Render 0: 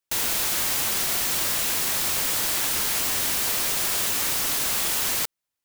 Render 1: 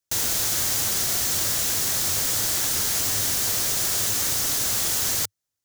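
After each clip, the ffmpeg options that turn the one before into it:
ffmpeg -i in.wav -af "equalizer=frequency=100:width_type=o:width=0.67:gain=10,equalizer=frequency=1000:width_type=o:width=0.67:gain=-4,equalizer=frequency=2500:width_type=o:width=0.67:gain=-5,equalizer=frequency=6300:width_type=o:width=0.67:gain=5" out.wav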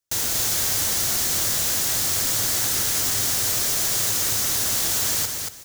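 ffmpeg -i in.wav -af "aecho=1:1:232|464|696:0.562|0.124|0.0272" out.wav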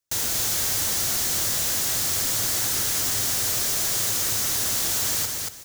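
ffmpeg -i in.wav -af "asoftclip=type=tanh:threshold=-17dB" out.wav

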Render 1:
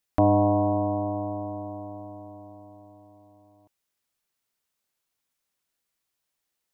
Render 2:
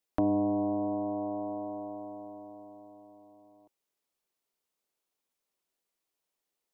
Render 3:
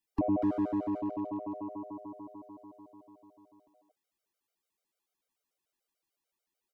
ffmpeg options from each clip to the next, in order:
ffmpeg -i in.wav -filter_complex "[0:a]equalizer=frequency=100:width_type=o:width=0.67:gain=-11,equalizer=frequency=400:width_type=o:width=0.67:gain=4,equalizer=frequency=1600:width_type=o:width=0.67:gain=-4,acrossover=split=330[link_01][link_02];[link_02]acompressor=threshold=-32dB:ratio=6[link_03];[link_01][link_03]amix=inputs=2:normalize=0,equalizer=frequency=590:width=0.38:gain=4.5,volume=-5.5dB" out.wav
ffmpeg -i in.wav -filter_complex "[0:a]acrossover=split=290|910[link_01][link_02][link_03];[link_03]asoftclip=type=tanh:threshold=-38.5dB[link_04];[link_01][link_02][link_04]amix=inputs=3:normalize=0,asplit=2[link_05][link_06];[link_06]adelay=240,highpass=300,lowpass=3400,asoftclip=type=hard:threshold=-27dB,volume=-6dB[link_07];[link_05][link_07]amix=inputs=2:normalize=0,afftfilt=real='re*gt(sin(2*PI*6.8*pts/sr)*(1-2*mod(floor(b*sr/1024/400),2)),0)':imag='im*gt(sin(2*PI*6.8*pts/sr)*(1-2*mod(floor(b*sr/1024/400),2)),0)':win_size=1024:overlap=0.75,volume=1.5dB" out.wav

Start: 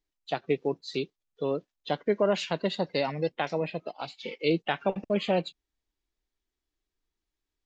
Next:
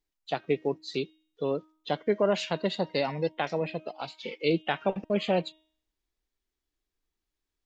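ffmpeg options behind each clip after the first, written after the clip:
ffmpeg -i in.wav -af "bandreject=frequency=313.8:width_type=h:width=4,bandreject=frequency=627.6:width_type=h:width=4,bandreject=frequency=941.4:width_type=h:width=4,bandreject=frequency=1255.2:width_type=h:width=4,bandreject=frequency=1569:width_type=h:width=4,bandreject=frequency=1882.8:width_type=h:width=4,bandreject=frequency=2196.6:width_type=h:width=4,bandreject=frequency=2510.4:width_type=h:width=4,bandreject=frequency=2824.2:width_type=h:width=4,bandreject=frequency=3138:width_type=h:width=4,bandreject=frequency=3451.8:width_type=h:width=4,bandreject=frequency=3765.6:width_type=h:width=4" out.wav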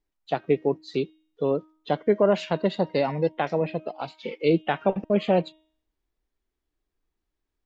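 ffmpeg -i in.wav -af "highshelf=frequency=2400:gain=-11.5,volume=5.5dB" out.wav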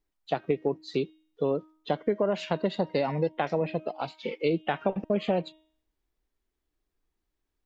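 ffmpeg -i in.wav -af "acompressor=threshold=-22dB:ratio=6" out.wav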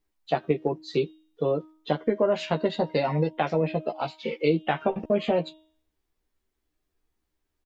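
ffmpeg -i in.wav -filter_complex "[0:a]asplit=2[link_01][link_02];[link_02]adelay=13,volume=-4dB[link_03];[link_01][link_03]amix=inputs=2:normalize=0,volume=1.5dB" out.wav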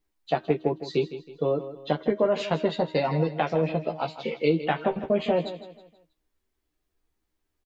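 ffmpeg -i in.wav -af "aecho=1:1:160|320|480|640:0.224|0.0873|0.0341|0.0133" out.wav

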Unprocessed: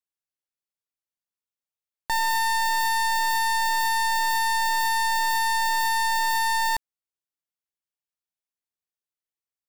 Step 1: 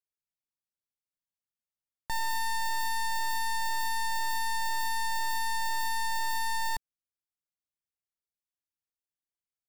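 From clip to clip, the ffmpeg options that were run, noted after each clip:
ffmpeg -i in.wav -af "bass=frequency=250:gain=9,treble=frequency=4000:gain=2,volume=-9dB" out.wav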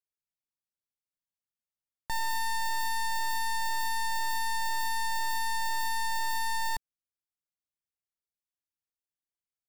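ffmpeg -i in.wav -af anull out.wav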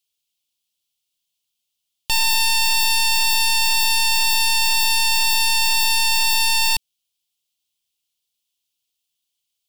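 ffmpeg -i in.wav -af "aeval=exprs='0.0531*(cos(1*acos(clip(val(0)/0.0531,-1,1)))-cos(1*PI/2))+0.0168*(cos(8*acos(clip(val(0)/0.0531,-1,1)))-cos(8*PI/2))':channel_layout=same,highshelf=frequency=2300:width_type=q:width=3:gain=10,volume=6dB" out.wav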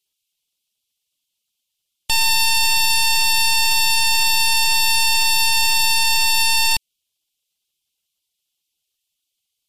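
ffmpeg -i in.wav -af "volume=2dB" -ar 48000 -c:a libmp3lame -b:a 56k out.mp3

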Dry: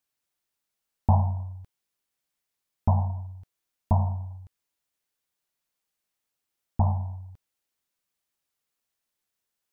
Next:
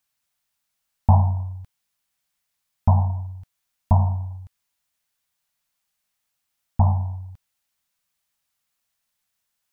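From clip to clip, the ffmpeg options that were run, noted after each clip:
ffmpeg -i in.wav -af "equalizer=frequency=380:width_type=o:width=0.79:gain=-13,volume=6dB" out.wav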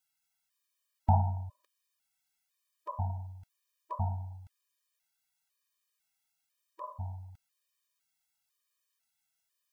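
ffmpeg -i in.wav -af "tiltshelf=frequency=640:gain=-5,afftfilt=real='re*gt(sin(2*PI*1*pts/sr)*(1-2*mod(floor(b*sr/1024/320),2)),0)':imag='im*gt(sin(2*PI*1*pts/sr)*(1-2*mod(floor(b*sr/1024/320),2)),0)':win_size=1024:overlap=0.75,volume=-6dB" out.wav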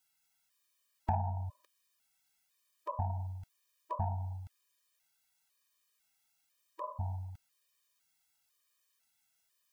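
ffmpeg -i in.wav -filter_complex "[0:a]acrossover=split=420|950[link_01][link_02][link_03];[link_01]acompressor=threshold=-38dB:ratio=4[link_04];[link_02]acompressor=threshold=-37dB:ratio=4[link_05];[link_03]acompressor=threshold=-54dB:ratio=4[link_06];[link_04][link_05][link_06]amix=inputs=3:normalize=0,asoftclip=type=tanh:threshold=-23dB,volume=4.5dB" out.wav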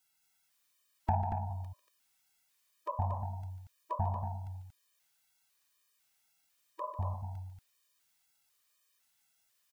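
ffmpeg -i in.wav -af "aecho=1:1:145.8|233.2:0.282|0.447,volume=1.5dB" out.wav

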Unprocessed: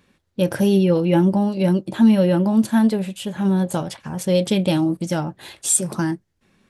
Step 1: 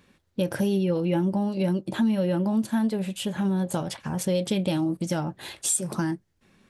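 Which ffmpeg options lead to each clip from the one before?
ffmpeg -i in.wav -af "acompressor=threshold=-25dB:ratio=2.5" out.wav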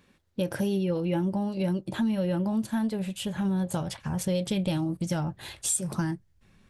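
ffmpeg -i in.wav -af "asubboost=boost=4:cutoff=130,volume=-2.5dB" out.wav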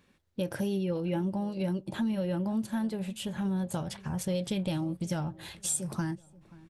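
ffmpeg -i in.wav -filter_complex "[0:a]asplit=2[link_01][link_02];[link_02]adelay=531,lowpass=frequency=1600:poles=1,volume=-21dB,asplit=2[link_03][link_04];[link_04]adelay=531,lowpass=frequency=1600:poles=1,volume=0.43,asplit=2[link_05][link_06];[link_06]adelay=531,lowpass=frequency=1600:poles=1,volume=0.43[link_07];[link_01][link_03][link_05][link_07]amix=inputs=4:normalize=0,volume=-3.5dB" out.wav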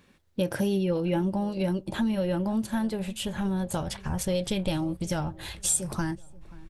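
ffmpeg -i in.wav -af "asubboost=boost=8.5:cutoff=55,volume=5.5dB" out.wav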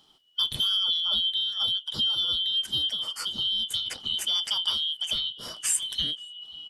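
ffmpeg -i in.wav -af "afftfilt=real='real(if(lt(b,272),68*(eq(floor(b/68),0)*1+eq(floor(b/68),1)*3+eq(floor(b/68),2)*0+eq(floor(b/68),3)*2)+mod(b,68),b),0)':imag='imag(if(lt(b,272),68*(eq(floor(b/68),0)*1+eq(floor(b/68),1)*3+eq(floor(b/68),2)*0+eq(floor(b/68),3)*2)+mod(b,68),b),0)':win_size=2048:overlap=0.75" out.wav

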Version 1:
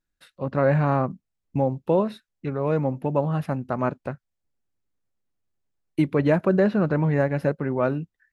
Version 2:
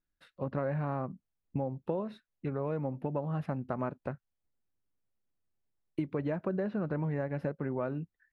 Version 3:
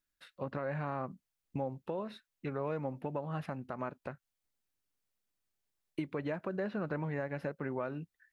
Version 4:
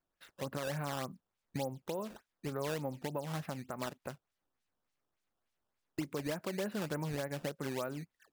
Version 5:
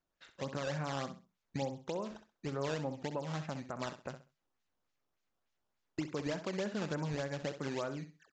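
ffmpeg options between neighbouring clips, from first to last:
ffmpeg -i in.wav -af "lowpass=frequency=2400:poles=1,acompressor=threshold=-26dB:ratio=6,volume=-4dB" out.wav
ffmpeg -i in.wav -af "tiltshelf=frequency=970:gain=-6,alimiter=level_in=2dB:limit=-24dB:level=0:latency=1:release=182,volume=-2dB,equalizer=frequency=390:width_type=o:width=2.3:gain=2" out.wav
ffmpeg -i in.wav -af "acrusher=samples=12:mix=1:aa=0.000001:lfo=1:lforange=19.2:lforate=3.4,volume=-1dB" out.wav
ffmpeg -i in.wav -filter_complex "[0:a]asplit=2[link_01][link_02];[link_02]aecho=0:1:65|130|195:0.282|0.0676|0.0162[link_03];[link_01][link_03]amix=inputs=2:normalize=0,aresample=16000,aresample=44100" out.wav

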